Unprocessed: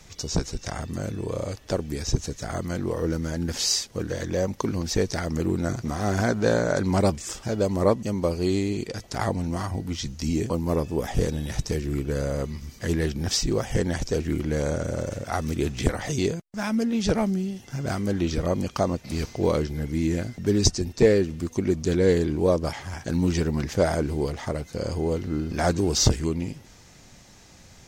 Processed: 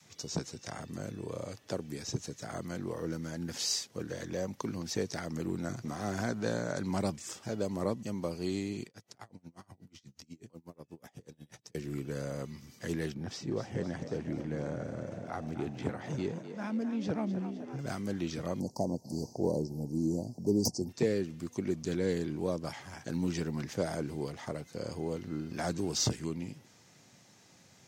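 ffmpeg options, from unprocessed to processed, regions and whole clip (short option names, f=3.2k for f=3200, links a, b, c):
-filter_complex "[0:a]asettb=1/sr,asplit=3[a][b][c];[a]atrim=end=8.864[d];[b]atrim=start=8.86:end=11.75,asetpts=PTS-STARTPTS,afade=t=in:d=0.004:c=qsin,afade=t=out:st=2.886:d=0.004:c=qsin,acompressor=threshold=-34dB:ratio=3:attack=3.2:release=140:knee=1:detection=peak,aeval=exprs='val(0)*pow(10,-30*(0.5-0.5*cos(2*PI*8.2*n/s))/20)':c=same[e];[c]atrim=start=11.746[f];[d][e]acrossfade=d=0.004:c1=hsin:c2=qsin[g];[g][f]acrossfade=d=0.004:c1=qsin:c2=hsin,asettb=1/sr,asplit=3[h][i][j];[h]atrim=end=13.144[k];[i]atrim=start=13.14:end=17.79,asetpts=PTS-STARTPTS,afade=t=in:d=0.004:c=qsin,afade=t=out:st=4.646:d=0.004:c=qsin,lowpass=f=1.5k:p=1,asplit=8[l][m][n][o][p][q][r][s];[m]adelay=255,afreqshift=59,volume=-11dB[t];[n]adelay=510,afreqshift=118,volume=-15.4dB[u];[o]adelay=765,afreqshift=177,volume=-19.9dB[v];[p]adelay=1020,afreqshift=236,volume=-24.3dB[w];[q]adelay=1275,afreqshift=295,volume=-28.7dB[x];[r]adelay=1530,afreqshift=354,volume=-33.2dB[y];[s]adelay=1785,afreqshift=413,volume=-37.6dB[z];[l][t][u][v][w][x][y][z]amix=inputs=8:normalize=0,atrim=end_sample=205065[aa];[j]atrim=start=17.786[ab];[k][aa]acrossfade=d=0.004:c1=hsin:c2=qsin[ac];[ac][ab]acrossfade=d=0.004:c1=qsin:c2=hsin,asettb=1/sr,asplit=3[ad][ae][af];[ad]atrim=end=18.604[ag];[ae]atrim=start=18.6:end=20.89,asetpts=PTS-STARTPTS,afade=t=in:d=0.004:c=qsin,afade=t=out:st=2.286:d=0.004:c=qsin,aeval=exprs='0.211*(abs(mod(val(0)/0.211+3,4)-2)-1)':c=same,asuperstop=centerf=2100:order=20:qfactor=0.59,equalizer=f=520:w=0.3:g=4.5[ah];[af]atrim=start=20.886[ai];[ag][ah]acrossfade=d=0.004:c1=hsin:c2=qsin[aj];[aj][ai]acrossfade=d=0.004:c1=qsin:c2=hsin,highpass=f=110:w=0.5412,highpass=f=110:w=1.3066,adynamicequalizer=threshold=0.0178:dfrequency=440:dqfactor=1.6:tfrequency=440:tqfactor=1.6:attack=5:release=100:ratio=0.375:range=2:mode=cutabove:tftype=bell,acrossover=split=420|3000[ak][al][am];[al]acompressor=threshold=-25dB:ratio=6[an];[ak][an][am]amix=inputs=3:normalize=0,volume=-8.5dB"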